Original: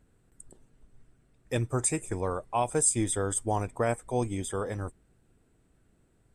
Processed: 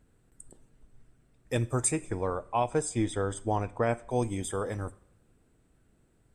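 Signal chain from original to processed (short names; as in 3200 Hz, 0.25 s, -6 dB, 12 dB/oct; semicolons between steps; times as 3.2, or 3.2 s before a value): 1.91–4.11 LPF 4500 Hz 12 dB/oct; two-slope reverb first 0.52 s, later 1.8 s, from -20 dB, DRR 16 dB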